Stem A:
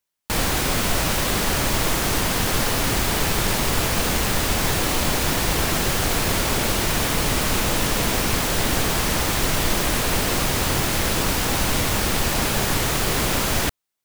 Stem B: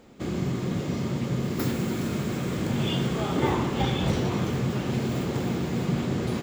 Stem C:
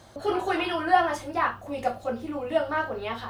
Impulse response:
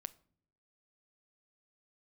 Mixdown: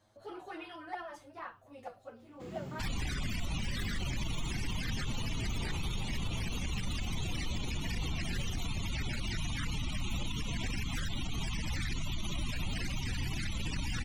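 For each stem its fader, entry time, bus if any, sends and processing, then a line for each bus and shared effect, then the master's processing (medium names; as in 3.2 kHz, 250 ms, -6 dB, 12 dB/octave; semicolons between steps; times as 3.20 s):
+1.5 dB, 2.50 s, bus A, no send, peaking EQ 450 Hz -11 dB 2 oct; loudest bins only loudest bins 64
-16.0 dB, 2.20 s, no bus, no send, none
-15.5 dB, 0.00 s, bus A, no send, none
bus A: 0.0 dB, touch-sensitive flanger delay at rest 9.7 ms, full sweep at -19.5 dBFS; compression, threshold -23 dBFS, peak gain reduction 7 dB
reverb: none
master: peak limiter -27 dBFS, peak gain reduction 11 dB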